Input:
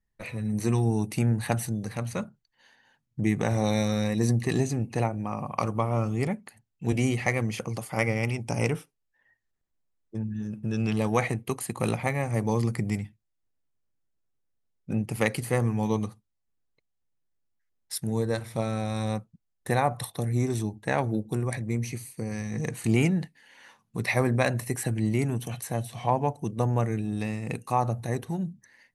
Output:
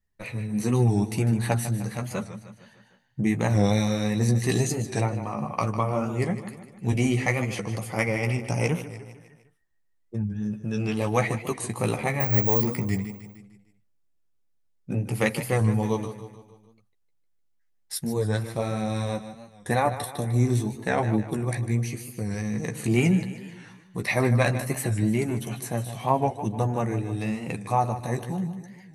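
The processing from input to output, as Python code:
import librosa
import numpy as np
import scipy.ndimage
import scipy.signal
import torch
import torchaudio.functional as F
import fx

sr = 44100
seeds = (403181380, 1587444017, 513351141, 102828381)

p1 = fx.resample_bad(x, sr, factor=2, down='filtered', up='zero_stuff', at=(12.2, 12.62))
p2 = p1 + fx.echo_feedback(p1, sr, ms=151, feedback_pct=52, wet_db=-12, dry=0)
p3 = fx.chorus_voices(p2, sr, voices=2, hz=0.83, base_ms=13, depth_ms=3.6, mix_pct=35)
p4 = fx.high_shelf(p3, sr, hz=3500.0, db=8.0, at=(4.35, 5.01))
p5 = fx.record_warp(p4, sr, rpm=45.0, depth_cents=100.0)
y = F.gain(torch.from_numpy(p5), 4.0).numpy()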